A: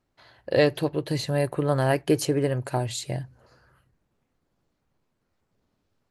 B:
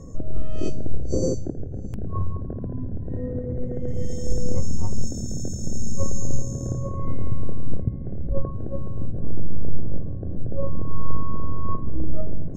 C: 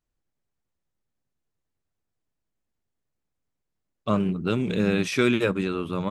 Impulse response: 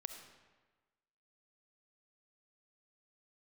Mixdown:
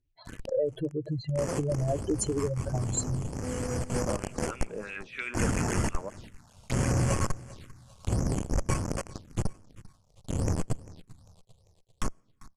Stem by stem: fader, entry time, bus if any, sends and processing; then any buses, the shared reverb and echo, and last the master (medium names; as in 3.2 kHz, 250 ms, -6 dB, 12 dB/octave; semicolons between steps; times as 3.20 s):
+2.0 dB, 0.00 s, bus A, no send, no echo send, spectral contrast enhancement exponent 3.6
-9.0 dB, 0.25 s, no bus, send -23 dB, echo send -19.5 dB, decimation with a swept rate 10×, swing 60% 3.1 Hz; fuzz box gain 32 dB, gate -37 dBFS; auto duck -8 dB, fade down 0.70 s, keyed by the first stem
-4.5 dB, 0.00 s, bus A, send -12.5 dB, no echo send, LFO band-pass sine 3.1 Hz 520–2700 Hz
bus A: 0.0 dB, compression 2:1, threshold -33 dBFS, peak gain reduction 10.5 dB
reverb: on, RT60 1.3 s, pre-delay 25 ms
echo: feedback delay 396 ms, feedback 45%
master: low-pass 10 kHz 24 dB/octave; treble shelf 2.2 kHz +11 dB; touch-sensitive phaser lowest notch 210 Hz, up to 3.8 kHz, full sweep at -30.5 dBFS